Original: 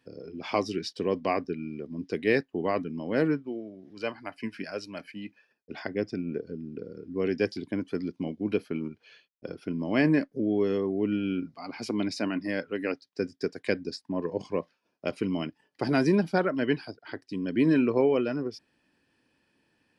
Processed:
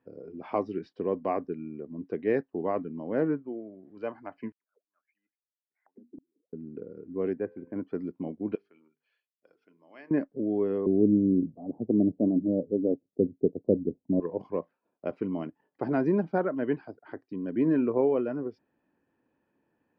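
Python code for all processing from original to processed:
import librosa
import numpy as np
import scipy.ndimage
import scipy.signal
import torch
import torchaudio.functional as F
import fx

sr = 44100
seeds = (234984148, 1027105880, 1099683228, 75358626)

y = fx.chain(x, sr, fx.auto_wah(base_hz=240.0, top_hz=4900.0, q=18.0, full_db=-27.0, direction='down'),
    fx.tremolo_decay(direction='swelling', hz=1.2, depth_db=36), at=(4.52, 6.53))
y = fx.chain(y, sr, fx.lowpass(hz=2100.0, slope=24),
    fx.comb_fb(f0_hz=86.0, decay_s=1.9, harmonics='all', damping=0.0, mix_pct=40), at=(7.33, 7.76))
y = fx.chain(y, sr, fx.differentiator(),
    fx.hum_notches(base_hz=50, count=9), at=(8.55, 10.11))
y = fx.chain(y, sr, fx.steep_lowpass(hz=630.0, slope=36),
    fx.low_shelf(hz=430.0, db=11.5), at=(10.86, 14.2))
y = scipy.signal.sosfilt(scipy.signal.butter(2, 1100.0, 'lowpass', fs=sr, output='sos'), y)
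y = fx.low_shelf(y, sr, hz=170.0, db=-7.5)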